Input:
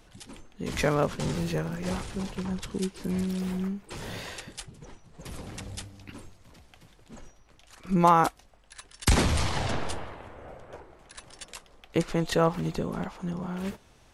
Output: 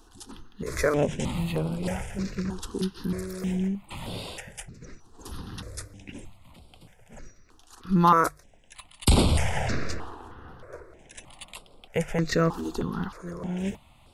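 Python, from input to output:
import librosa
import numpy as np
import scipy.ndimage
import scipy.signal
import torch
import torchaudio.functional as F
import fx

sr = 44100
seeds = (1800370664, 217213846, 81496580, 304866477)

y = fx.hum_notches(x, sr, base_hz=50, count=3)
y = fx.phaser_held(y, sr, hz=3.2, low_hz=580.0, high_hz=6200.0)
y = y * 10.0 ** (4.0 / 20.0)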